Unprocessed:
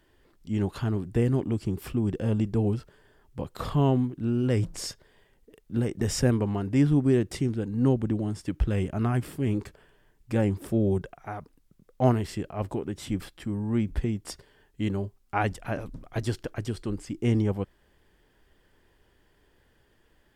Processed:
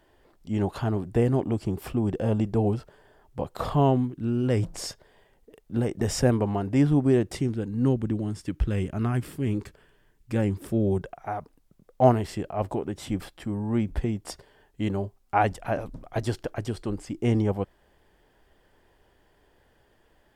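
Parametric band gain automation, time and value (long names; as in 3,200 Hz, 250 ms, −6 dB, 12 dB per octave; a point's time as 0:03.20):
parametric band 710 Hz 1.1 octaves
0:03.79 +9 dB
0:04.16 −2.5 dB
0:04.66 +7 dB
0:07.25 +7 dB
0:07.77 −2.5 dB
0:10.66 −2.5 dB
0:11.14 +7 dB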